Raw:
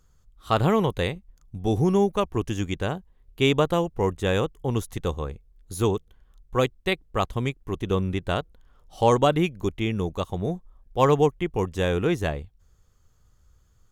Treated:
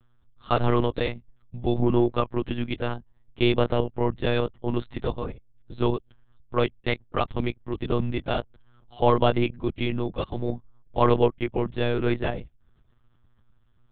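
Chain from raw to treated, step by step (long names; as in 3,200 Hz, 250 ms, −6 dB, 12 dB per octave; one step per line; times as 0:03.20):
spectral magnitudes quantised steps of 15 dB
one-pitch LPC vocoder at 8 kHz 120 Hz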